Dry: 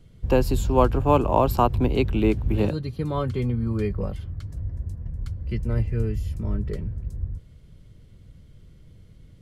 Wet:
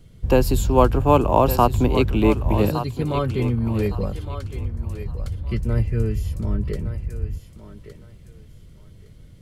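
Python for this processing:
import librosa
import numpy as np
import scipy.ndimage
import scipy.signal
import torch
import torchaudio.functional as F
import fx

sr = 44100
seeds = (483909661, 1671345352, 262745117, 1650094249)

p1 = fx.high_shelf(x, sr, hz=6700.0, db=6.0)
p2 = p1 + fx.echo_thinned(p1, sr, ms=1163, feedback_pct=25, hz=370.0, wet_db=-10.0, dry=0)
y = p2 * librosa.db_to_amplitude(3.0)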